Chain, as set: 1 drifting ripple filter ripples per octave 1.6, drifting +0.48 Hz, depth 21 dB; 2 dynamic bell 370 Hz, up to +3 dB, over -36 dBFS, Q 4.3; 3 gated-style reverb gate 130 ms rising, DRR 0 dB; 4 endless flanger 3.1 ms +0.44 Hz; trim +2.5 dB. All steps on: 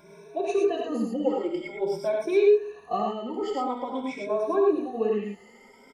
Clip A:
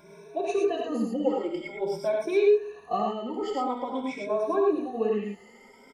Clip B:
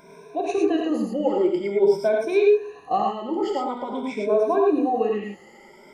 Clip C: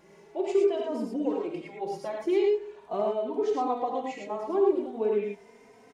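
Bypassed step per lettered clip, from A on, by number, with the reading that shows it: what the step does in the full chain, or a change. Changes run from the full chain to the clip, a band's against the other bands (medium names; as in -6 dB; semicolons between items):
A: 2, momentary loudness spread change -1 LU; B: 4, 1 kHz band +1.5 dB; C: 1, 2 kHz band -3.5 dB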